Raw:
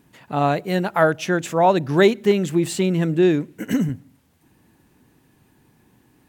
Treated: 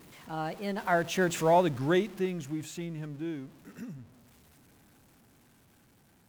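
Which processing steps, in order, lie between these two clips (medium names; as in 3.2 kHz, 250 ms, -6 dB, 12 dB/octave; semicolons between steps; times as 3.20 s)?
jump at every zero crossing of -29.5 dBFS; Doppler pass-by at 1.35 s, 34 m/s, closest 12 m; trim -6.5 dB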